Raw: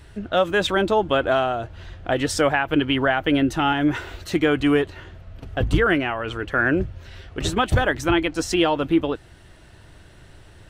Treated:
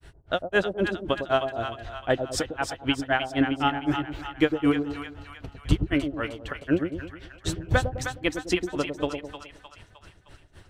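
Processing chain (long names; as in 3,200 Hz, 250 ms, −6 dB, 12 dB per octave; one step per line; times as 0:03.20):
granular cloud 140 ms, grains 3.9 per second, spray 21 ms, pitch spread up and down by 0 semitones
echo with a time of its own for lows and highs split 790 Hz, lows 104 ms, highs 308 ms, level −6.5 dB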